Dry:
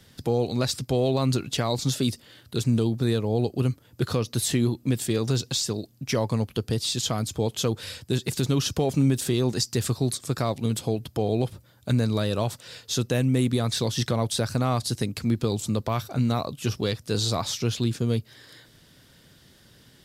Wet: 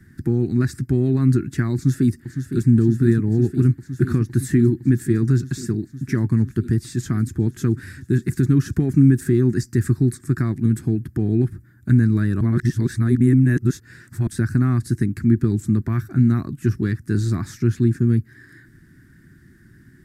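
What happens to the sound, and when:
1.74–2.69 echo throw 0.51 s, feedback 85%, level -8.5 dB
12.41–14.27 reverse
whole clip: EQ curve 360 Hz 0 dB, 500 Hz -27 dB, 1000 Hz -18 dB, 1700 Hz +1 dB, 3100 Hz -28 dB, 8100 Hz -14 dB; gain +8 dB

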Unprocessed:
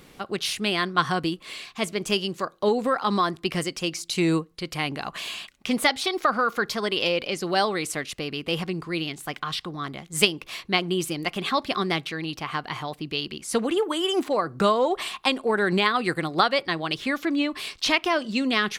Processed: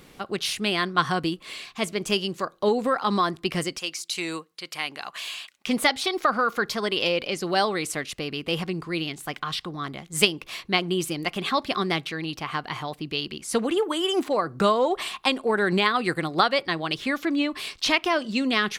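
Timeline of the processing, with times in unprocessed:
3.78–5.67 HPF 1100 Hz 6 dB/oct

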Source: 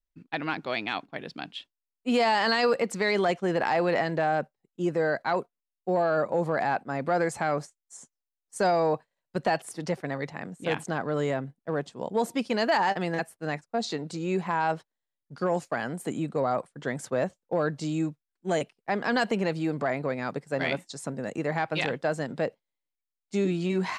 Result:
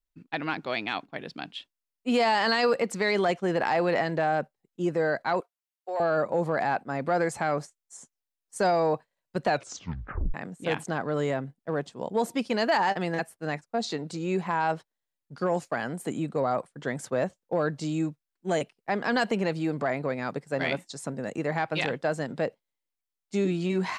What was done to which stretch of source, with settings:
5.4–6 Bessel high-pass 700 Hz, order 4
9.47 tape stop 0.87 s

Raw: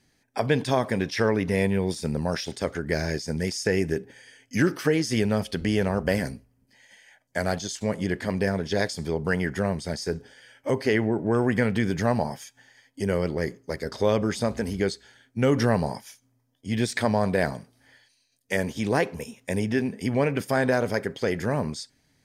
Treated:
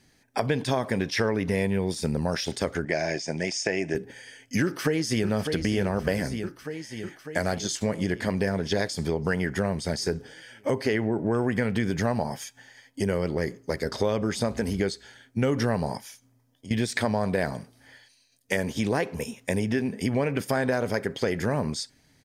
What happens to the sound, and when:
2.85–3.95 speaker cabinet 210–7200 Hz, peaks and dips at 220 Hz -7 dB, 450 Hz -7 dB, 660 Hz +8 dB, 1300 Hz -7 dB, 2400 Hz +5 dB, 4200 Hz -8 dB
4.63–5.28 echo throw 0.6 s, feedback 65%, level -10 dB
15.97–16.71 compressor 3:1, threshold -45 dBFS
whole clip: compressor 3:1, threshold -28 dBFS; gain +4.5 dB

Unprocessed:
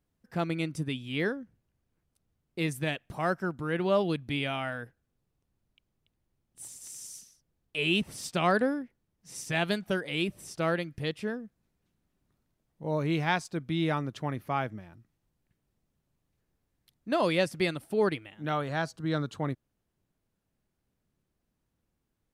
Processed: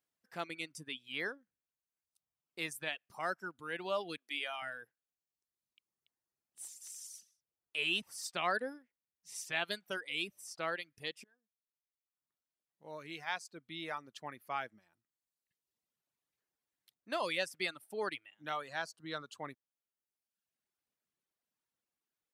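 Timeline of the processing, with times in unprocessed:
4.17–4.62 steep high-pass 280 Hz
11.24–14.68 fade in, from -23.5 dB
whole clip: reverb removal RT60 1.1 s; HPF 1200 Hz 6 dB/oct; gain -2.5 dB

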